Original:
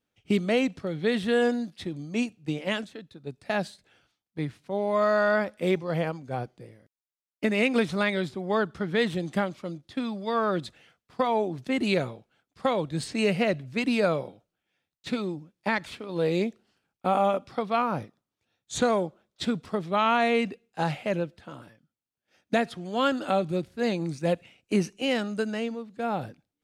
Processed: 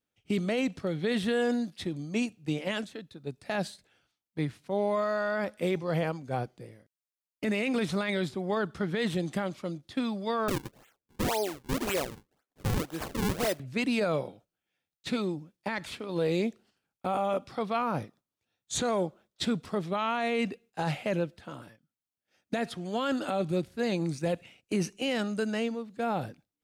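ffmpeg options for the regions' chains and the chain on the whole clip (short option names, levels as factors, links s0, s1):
-filter_complex "[0:a]asettb=1/sr,asplit=3[s0][s1][s2];[s0]atrim=end=10.484[s3];[s1]atrim=start=10.48:end=13.6,asetpts=PTS-STARTPTS,afade=t=in:d=0.004:c=qsin,afade=t=out:st=3.116:d=0.004:c=qsin,highpass=350,acrusher=samples=40:mix=1:aa=0.000001:lfo=1:lforange=64:lforate=1.9[s4];[s2]atrim=start=13.596[s5];[s3][s4]acrossfade=d=0.004:c1=hsin:c2=qsin[s6];[s6][s5]acrossfade=d=0.004:c1=qsin:c2=hsin,agate=range=0.501:threshold=0.00178:ratio=16:detection=peak,highshelf=f=6800:g=4.5,alimiter=limit=0.1:level=0:latency=1:release=10"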